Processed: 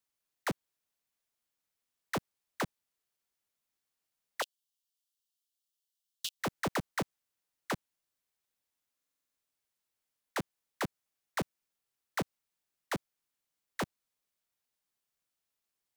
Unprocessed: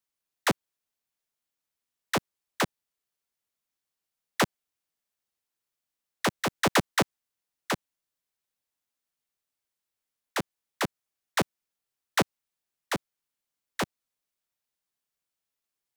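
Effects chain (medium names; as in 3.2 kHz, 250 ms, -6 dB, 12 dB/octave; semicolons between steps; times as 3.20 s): 4.42–6.40 s: steep high-pass 2.8 kHz 96 dB/octave; saturation -29 dBFS, distortion -8 dB; buffer glitch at 8.95 s, samples 2048, times 8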